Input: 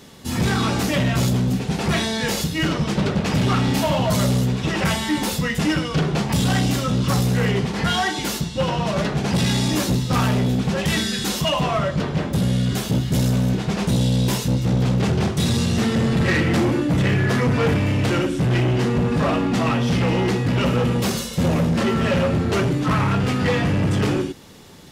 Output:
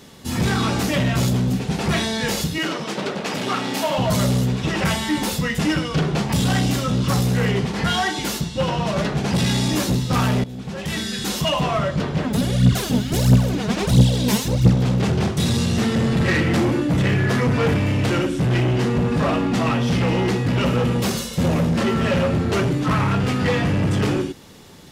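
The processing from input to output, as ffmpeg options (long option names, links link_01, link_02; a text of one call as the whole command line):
ffmpeg -i in.wav -filter_complex "[0:a]asettb=1/sr,asplit=3[link_01][link_02][link_03];[link_01]atrim=end=2.584[link_04];[link_02]atrim=start=2.58:end=3.98,asetpts=PTS-STARTPTS,afade=type=in:duration=0.004:curve=qsin,afade=type=out:start_time=1.396:duration=0.004:curve=qsin,highpass=310[link_05];[link_03]atrim=start=3.976[link_06];[link_04][link_05]acrossfade=duration=0.004:curve1=hsin:curve2=qsin[link_07];[link_07][link_06]acrossfade=duration=0.004:curve1=qsin:curve2=hsin,asplit=3[link_08][link_09][link_10];[link_08]afade=type=out:start_time=12.23:duration=0.02[link_11];[link_09]aphaser=in_gain=1:out_gain=1:delay=4.9:decay=0.67:speed=1.5:type=triangular,afade=type=in:start_time=12.23:duration=0.02,afade=type=out:start_time=14.73:duration=0.02[link_12];[link_10]afade=type=in:start_time=14.73:duration=0.02[link_13];[link_11][link_12][link_13]amix=inputs=3:normalize=0,asplit=2[link_14][link_15];[link_14]atrim=end=10.44,asetpts=PTS-STARTPTS,afade=type=out:start_time=10.436:duration=0.004:curve=hsin:silence=0.149624[link_16];[link_15]atrim=start=10.44,asetpts=PTS-STARTPTS,afade=type=in:duration=0.99:silence=0.149624[link_17];[link_16][link_17]concat=n=2:v=0:a=1" out.wav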